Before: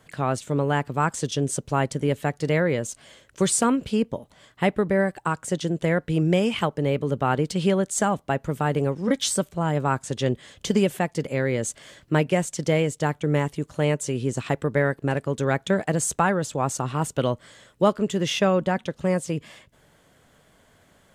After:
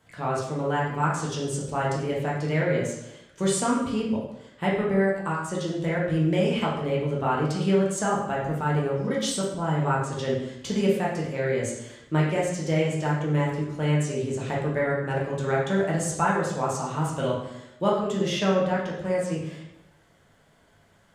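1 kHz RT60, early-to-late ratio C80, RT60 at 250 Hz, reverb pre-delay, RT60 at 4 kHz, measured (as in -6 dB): 0.80 s, 6.0 dB, 0.90 s, 7 ms, 0.70 s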